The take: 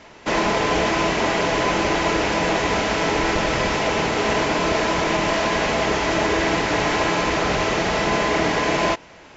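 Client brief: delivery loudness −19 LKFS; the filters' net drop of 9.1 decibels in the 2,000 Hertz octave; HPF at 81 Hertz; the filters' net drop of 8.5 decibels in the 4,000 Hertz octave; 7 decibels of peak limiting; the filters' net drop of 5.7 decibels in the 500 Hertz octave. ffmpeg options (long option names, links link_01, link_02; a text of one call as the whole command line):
ffmpeg -i in.wav -af "highpass=81,equalizer=frequency=500:width_type=o:gain=-7,equalizer=frequency=2000:width_type=o:gain=-9,equalizer=frequency=4000:width_type=o:gain=-8,volume=9.5dB,alimiter=limit=-10dB:level=0:latency=1" out.wav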